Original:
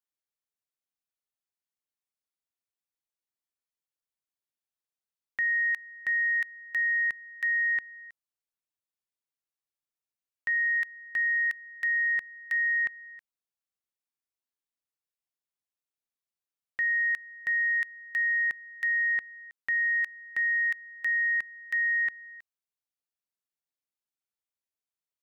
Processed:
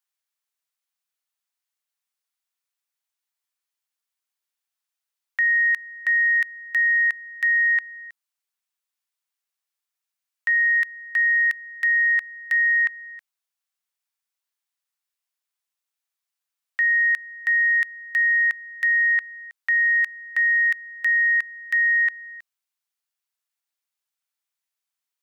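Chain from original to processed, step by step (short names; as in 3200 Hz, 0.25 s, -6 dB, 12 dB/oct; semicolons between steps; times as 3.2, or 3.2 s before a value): HPF 870 Hz 12 dB/oct; gain +7.5 dB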